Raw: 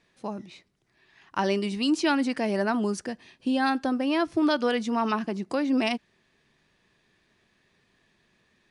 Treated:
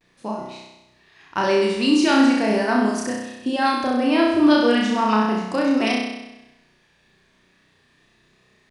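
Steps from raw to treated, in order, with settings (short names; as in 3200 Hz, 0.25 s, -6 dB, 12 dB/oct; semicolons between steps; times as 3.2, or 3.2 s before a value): flutter echo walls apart 5.6 m, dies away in 1 s; vibrato 0.39 Hz 35 cents; gain +3 dB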